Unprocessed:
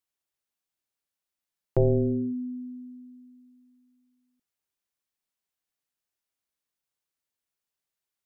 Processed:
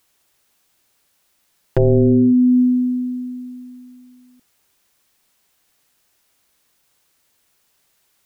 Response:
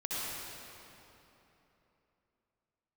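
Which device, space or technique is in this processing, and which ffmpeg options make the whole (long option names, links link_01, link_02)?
loud club master: -af "acompressor=threshold=-26dB:ratio=2.5,asoftclip=type=hard:threshold=-21dB,alimiter=level_in=32.5dB:limit=-1dB:release=50:level=0:latency=1,volume=-8.5dB"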